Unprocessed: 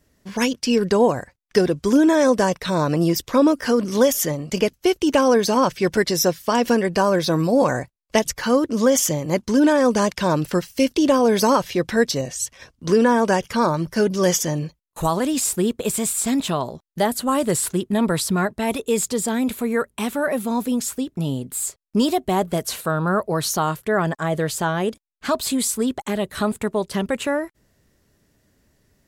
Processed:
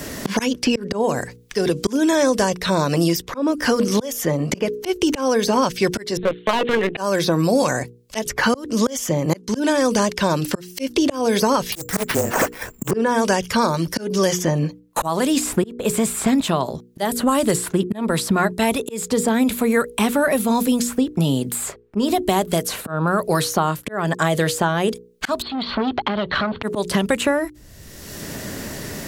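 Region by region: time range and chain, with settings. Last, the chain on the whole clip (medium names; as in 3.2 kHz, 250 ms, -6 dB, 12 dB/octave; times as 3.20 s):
6.17–6.97 s: LPC vocoder at 8 kHz pitch kept + hard clipper -15 dBFS + upward expansion, over -42 dBFS
11.72–12.91 s: frequency shift -29 Hz + careless resampling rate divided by 6×, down none, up zero stuff + loudspeaker Doppler distortion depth 0.44 ms
25.42–26.63 s: rippled Chebyshev low-pass 4.5 kHz, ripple 6 dB + compression 5:1, threshold -36 dBFS + transformer saturation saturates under 1.3 kHz
whole clip: hum notches 60/120/180/240/300/360/420/480 Hz; slow attack 507 ms; three bands compressed up and down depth 100%; trim +4 dB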